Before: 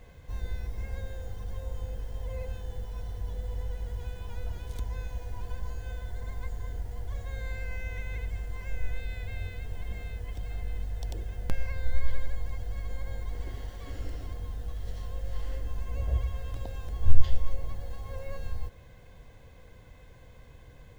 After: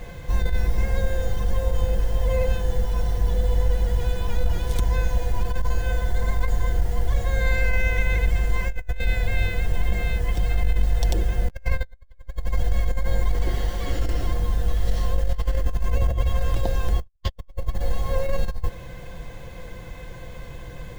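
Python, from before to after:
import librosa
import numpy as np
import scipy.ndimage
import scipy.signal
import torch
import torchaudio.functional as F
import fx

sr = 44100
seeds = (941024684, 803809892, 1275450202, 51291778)

y = x + 0.41 * np.pad(x, (int(5.8 * sr / 1000.0), 0))[:len(x)]
y = fx.over_compress(y, sr, threshold_db=-30.0, ratio=-0.5)
y = y * 10.0 ** (8.5 / 20.0)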